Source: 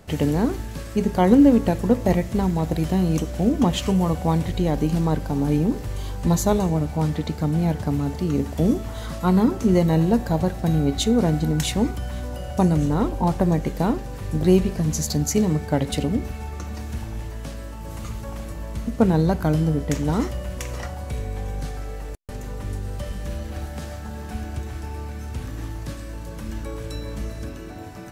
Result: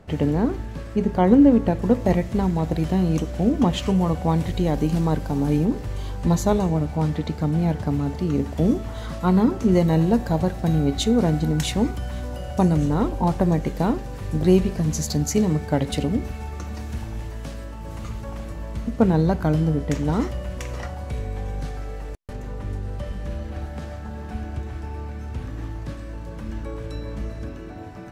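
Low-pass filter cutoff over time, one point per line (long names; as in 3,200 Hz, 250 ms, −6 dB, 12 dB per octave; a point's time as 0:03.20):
low-pass filter 6 dB per octave
2,000 Hz
from 0:01.82 4,600 Hz
from 0:04.38 11,000 Hz
from 0:05.65 4,700 Hz
from 0:09.72 8,000 Hz
from 0:17.64 4,400 Hz
from 0:22.33 2,400 Hz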